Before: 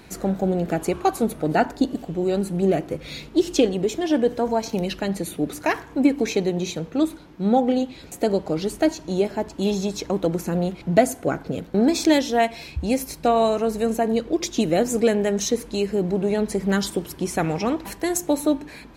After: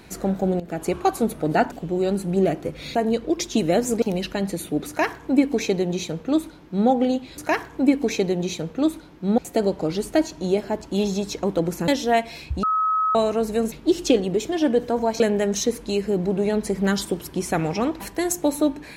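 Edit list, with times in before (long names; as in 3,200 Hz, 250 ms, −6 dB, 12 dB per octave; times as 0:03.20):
0:00.60–0:00.92: fade in, from −15 dB
0:01.72–0:01.98: remove
0:03.21–0:04.69: swap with 0:13.98–0:15.05
0:05.55–0:07.55: duplicate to 0:08.05
0:10.55–0:12.14: remove
0:12.89–0:13.41: beep over 1,280 Hz −18 dBFS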